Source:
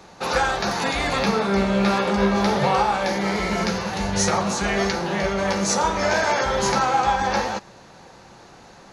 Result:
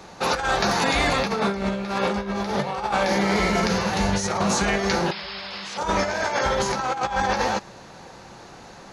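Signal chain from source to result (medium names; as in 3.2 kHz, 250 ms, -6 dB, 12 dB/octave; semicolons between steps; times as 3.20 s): painted sound noise, 5.11–5.78 s, 670–5400 Hz -17 dBFS; compressor with a negative ratio -23 dBFS, ratio -0.5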